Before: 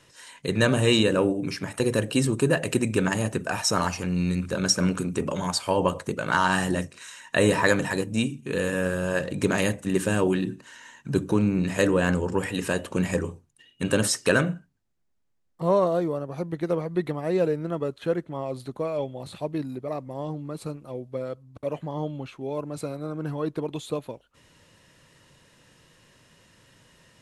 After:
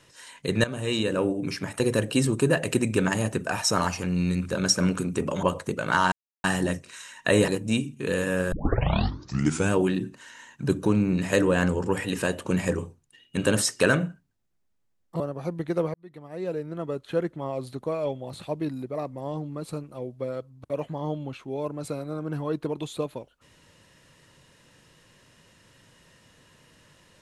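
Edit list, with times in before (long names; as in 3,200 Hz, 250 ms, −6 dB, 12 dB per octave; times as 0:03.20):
0:00.64–0:01.51: fade in, from −14.5 dB
0:05.43–0:05.83: remove
0:06.52: splice in silence 0.32 s
0:07.56–0:07.94: remove
0:08.98: tape start 1.21 s
0:15.66–0:16.13: remove
0:16.87–0:18.18: fade in linear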